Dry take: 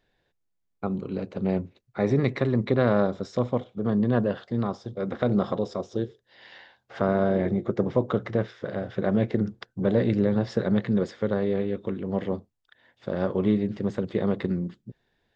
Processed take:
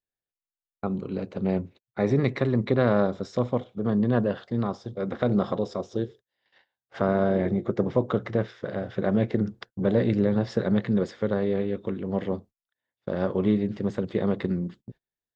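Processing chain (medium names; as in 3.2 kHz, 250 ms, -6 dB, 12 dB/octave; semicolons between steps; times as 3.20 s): gate -45 dBFS, range -27 dB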